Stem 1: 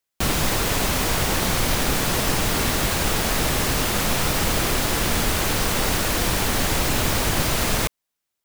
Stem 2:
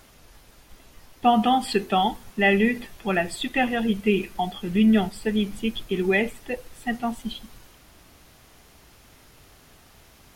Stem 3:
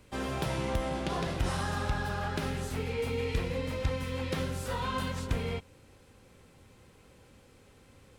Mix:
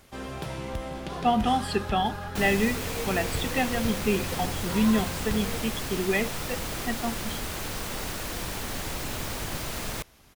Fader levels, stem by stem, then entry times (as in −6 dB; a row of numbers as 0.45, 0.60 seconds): −11.5, −4.5, −2.5 decibels; 2.15, 0.00, 0.00 seconds